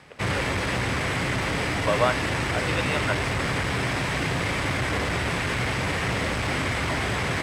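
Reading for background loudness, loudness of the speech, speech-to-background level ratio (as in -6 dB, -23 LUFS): -25.5 LUFS, -30.0 LUFS, -4.5 dB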